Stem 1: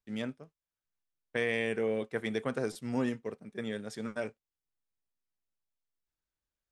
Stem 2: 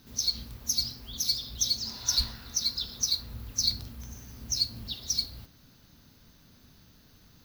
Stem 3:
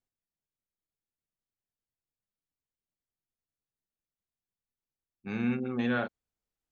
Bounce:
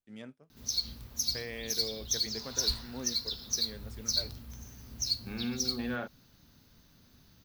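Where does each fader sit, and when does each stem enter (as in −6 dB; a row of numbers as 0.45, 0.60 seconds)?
−10.0, −3.5, −6.0 decibels; 0.00, 0.50, 0.00 seconds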